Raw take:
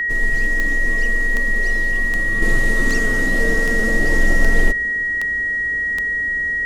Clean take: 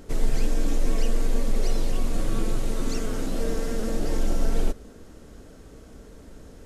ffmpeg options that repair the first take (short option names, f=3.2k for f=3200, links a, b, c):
-af "adeclick=t=4,bandreject=f=1.9k:w=30,asetnsamples=n=441:p=0,asendcmd='2.42 volume volume -6.5dB',volume=0dB"